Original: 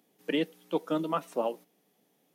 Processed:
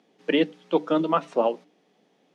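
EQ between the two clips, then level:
band-pass filter 150–5,800 Hz
high-frequency loss of the air 55 metres
mains-hum notches 50/100/150/200/250/300 Hz
+8.0 dB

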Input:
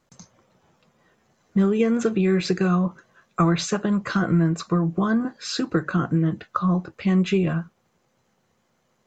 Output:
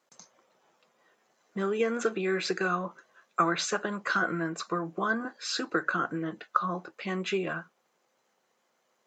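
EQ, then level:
dynamic equaliser 1,500 Hz, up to +6 dB, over −43 dBFS, Q 3.2
high-pass filter 400 Hz 12 dB per octave
−3.0 dB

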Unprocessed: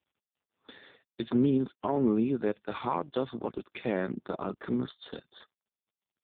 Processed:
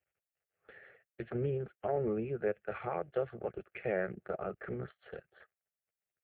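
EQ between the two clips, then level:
phaser with its sweep stopped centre 990 Hz, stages 6
0.0 dB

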